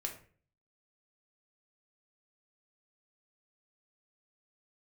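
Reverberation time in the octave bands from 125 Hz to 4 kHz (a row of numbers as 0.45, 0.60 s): 0.70, 0.55, 0.50, 0.40, 0.40, 0.30 s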